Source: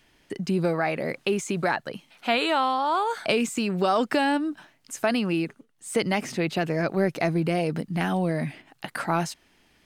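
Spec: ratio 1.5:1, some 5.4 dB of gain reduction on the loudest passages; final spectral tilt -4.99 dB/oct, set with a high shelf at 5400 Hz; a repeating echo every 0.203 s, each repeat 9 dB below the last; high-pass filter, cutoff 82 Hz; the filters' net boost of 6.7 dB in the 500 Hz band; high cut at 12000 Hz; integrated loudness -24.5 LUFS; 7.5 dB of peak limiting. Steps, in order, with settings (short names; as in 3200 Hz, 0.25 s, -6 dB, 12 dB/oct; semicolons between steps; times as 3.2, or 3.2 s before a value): HPF 82 Hz; LPF 12000 Hz; bell 500 Hz +8.5 dB; high shelf 5400 Hz +4.5 dB; compressor 1.5:1, threshold -28 dBFS; limiter -16.5 dBFS; feedback echo 0.203 s, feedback 35%, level -9 dB; gain +3 dB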